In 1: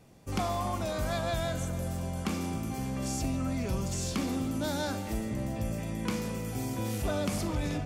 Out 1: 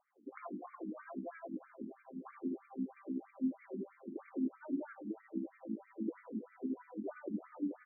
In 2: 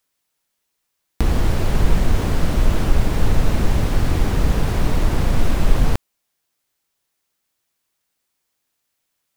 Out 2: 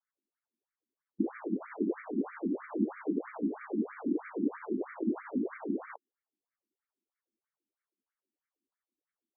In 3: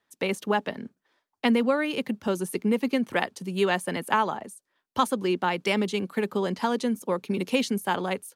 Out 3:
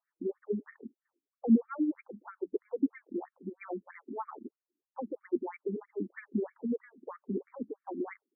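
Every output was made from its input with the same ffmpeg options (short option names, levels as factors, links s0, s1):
-af "tremolo=f=11:d=0.5,lowshelf=f=450:t=q:w=1.5:g=8.5,afftfilt=real='re*between(b*sr/1024,260*pow(1700/260,0.5+0.5*sin(2*PI*3.1*pts/sr))/1.41,260*pow(1700/260,0.5+0.5*sin(2*PI*3.1*pts/sr))*1.41)':imag='im*between(b*sr/1024,260*pow(1700/260,0.5+0.5*sin(2*PI*3.1*pts/sr))/1.41,260*pow(1700/260,0.5+0.5*sin(2*PI*3.1*pts/sr))*1.41)':win_size=1024:overlap=0.75,volume=0.473"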